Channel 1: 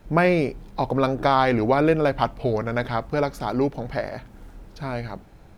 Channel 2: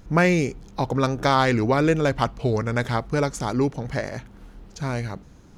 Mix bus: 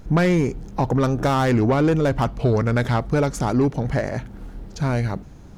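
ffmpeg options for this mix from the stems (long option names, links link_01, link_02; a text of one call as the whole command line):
ffmpeg -i stem1.wav -i stem2.wav -filter_complex "[0:a]acompressor=threshold=-25dB:ratio=6,volume=-3.5dB[link_01];[1:a]asoftclip=type=tanh:threshold=-18.5dB,volume=1dB[link_02];[link_01][link_02]amix=inputs=2:normalize=0,lowshelf=frequency=340:gain=4.5" out.wav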